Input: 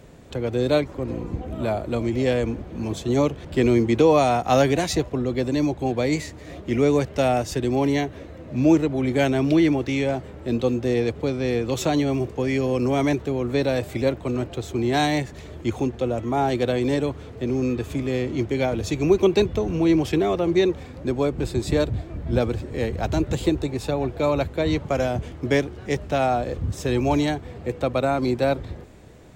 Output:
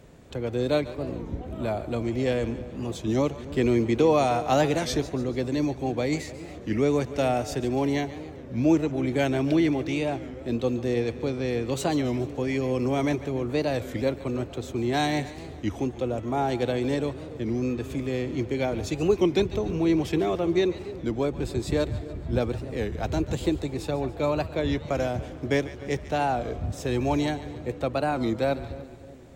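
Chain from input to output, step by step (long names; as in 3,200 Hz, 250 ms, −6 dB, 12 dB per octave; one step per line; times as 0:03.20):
on a send: echo with a time of its own for lows and highs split 560 Hz, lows 304 ms, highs 143 ms, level −15 dB
on the sum: wow of a warped record 33 1/3 rpm, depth 160 cents
level −4 dB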